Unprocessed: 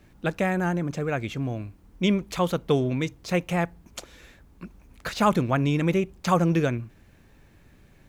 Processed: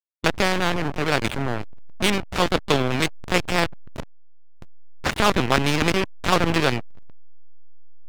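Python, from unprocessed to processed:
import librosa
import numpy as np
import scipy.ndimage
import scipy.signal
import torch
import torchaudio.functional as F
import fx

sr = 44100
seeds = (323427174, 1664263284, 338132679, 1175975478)

y = fx.lpc_vocoder(x, sr, seeds[0], excitation='pitch_kept', order=10)
y = fx.backlash(y, sr, play_db=-27.0)
y = fx.spectral_comp(y, sr, ratio=2.0)
y = y * librosa.db_to_amplitude(5.0)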